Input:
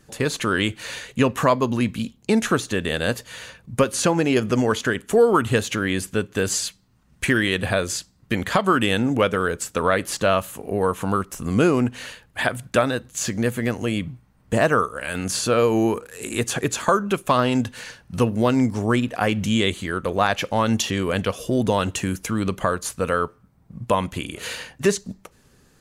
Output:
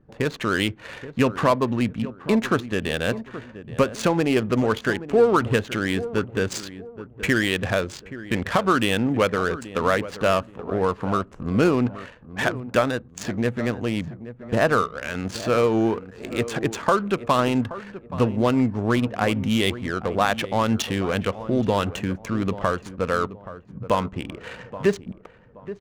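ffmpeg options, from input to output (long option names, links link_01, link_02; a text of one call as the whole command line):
ffmpeg -i in.wav -filter_complex "[0:a]asettb=1/sr,asplit=3[link_01][link_02][link_03];[link_01]atrim=end=23.994[link_04];[link_02]atrim=start=23.99:end=24.91,asetpts=PTS-STARTPTS,afade=type=in:duration=0.004:curve=qsin,afade=type=out:start_time=0.916:duration=0.004:curve=qsin,aemphasis=mode=reproduction:type=50fm[link_05];[link_03]atrim=start=24.906[link_06];[link_04][link_05]acrossfade=duration=0.004:curve1=hsin:curve2=qsin[link_07];[link_07][link_06]acrossfade=duration=0.004:curve1=qsin:curve2=hsin,adynamicsmooth=sensitivity=3:basefreq=870,asplit=2[link_08][link_09];[link_09]adelay=826,lowpass=frequency=1200:poles=1,volume=-13.5dB,asplit=2[link_10][link_11];[link_11]adelay=826,lowpass=frequency=1200:poles=1,volume=0.33,asplit=2[link_12][link_13];[link_13]adelay=826,lowpass=frequency=1200:poles=1,volume=0.33[link_14];[link_08][link_10][link_12][link_14]amix=inputs=4:normalize=0,volume=-1dB" out.wav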